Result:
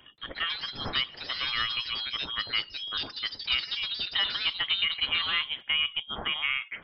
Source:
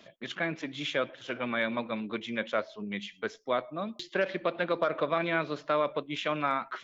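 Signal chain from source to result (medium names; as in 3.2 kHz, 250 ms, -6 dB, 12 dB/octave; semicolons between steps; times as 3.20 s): frequency inversion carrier 3.5 kHz; ever faster or slower copies 179 ms, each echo +4 st, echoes 2, each echo -6 dB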